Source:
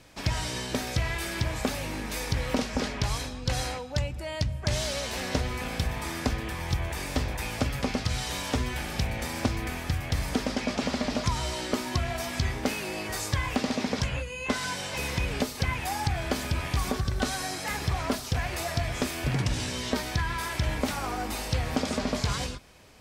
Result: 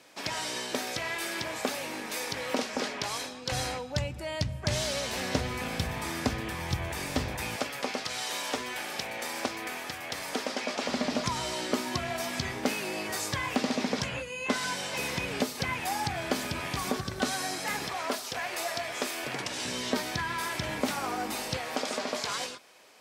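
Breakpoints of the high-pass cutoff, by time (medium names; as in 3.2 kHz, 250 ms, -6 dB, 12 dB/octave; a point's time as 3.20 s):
310 Hz
from 3.52 s 95 Hz
from 7.56 s 400 Hz
from 10.89 s 170 Hz
from 17.88 s 400 Hz
from 19.65 s 180 Hz
from 21.57 s 420 Hz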